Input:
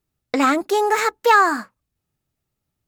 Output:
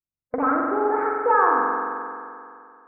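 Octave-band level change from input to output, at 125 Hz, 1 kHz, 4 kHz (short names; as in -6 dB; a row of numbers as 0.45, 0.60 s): n/a, -2.0 dB, under -40 dB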